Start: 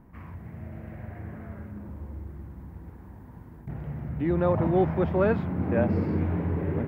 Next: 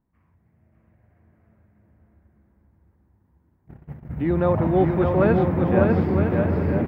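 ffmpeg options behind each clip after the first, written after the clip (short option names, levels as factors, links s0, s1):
-filter_complex "[0:a]agate=range=0.0562:threshold=0.0251:ratio=16:detection=peak,asplit=2[s0][s1];[s1]aecho=0:1:600|960|1176|1306|1383:0.631|0.398|0.251|0.158|0.1[s2];[s0][s2]amix=inputs=2:normalize=0,volume=1.5"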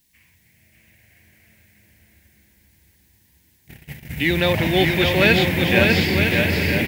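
-af "aexciter=amount=14.3:drive=9:freq=2000"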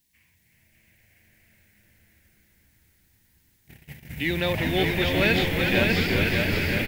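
-filter_complex "[0:a]asplit=8[s0][s1][s2][s3][s4][s5][s6][s7];[s1]adelay=372,afreqshift=-89,volume=0.501[s8];[s2]adelay=744,afreqshift=-178,volume=0.266[s9];[s3]adelay=1116,afreqshift=-267,volume=0.141[s10];[s4]adelay=1488,afreqshift=-356,volume=0.075[s11];[s5]adelay=1860,afreqshift=-445,volume=0.0394[s12];[s6]adelay=2232,afreqshift=-534,volume=0.0209[s13];[s7]adelay=2604,afreqshift=-623,volume=0.0111[s14];[s0][s8][s9][s10][s11][s12][s13][s14]amix=inputs=8:normalize=0,volume=0.473"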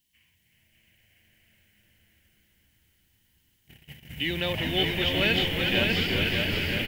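-af "equalizer=f=3000:t=o:w=0.21:g=14,volume=0.596"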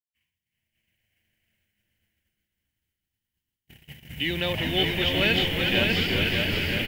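-af "agate=range=0.0224:threshold=0.002:ratio=3:detection=peak,volume=1.19"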